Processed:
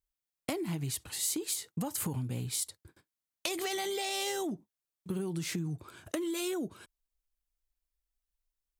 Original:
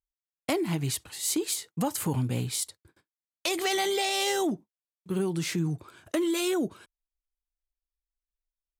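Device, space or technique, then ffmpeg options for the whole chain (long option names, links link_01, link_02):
ASMR close-microphone chain: -af "lowshelf=frequency=240:gain=5,acompressor=threshold=-33dB:ratio=5,highshelf=frequency=6700:gain=5"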